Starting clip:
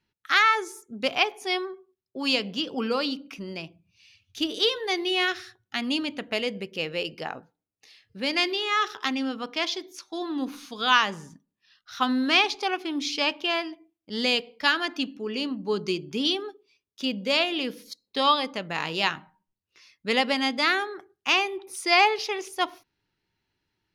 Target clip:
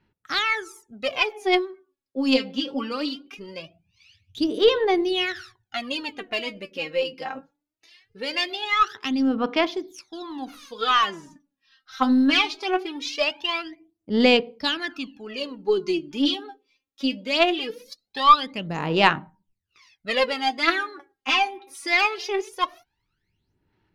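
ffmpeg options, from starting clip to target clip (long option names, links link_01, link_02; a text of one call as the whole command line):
ffmpeg -i in.wav -af "aphaser=in_gain=1:out_gain=1:delay=3.8:decay=0.78:speed=0.21:type=sinusoidal,highshelf=frequency=5100:gain=-7.5,aeval=exprs='1.12*(cos(1*acos(clip(val(0)/1.12,-1,1)))-cos(1*PI/2))+0.0447*(cos(4*acos(clip(val(0)/1.12,-1,1)))-cos(4*PI/2))':channel_layout=same,volume=-2dB" out.wav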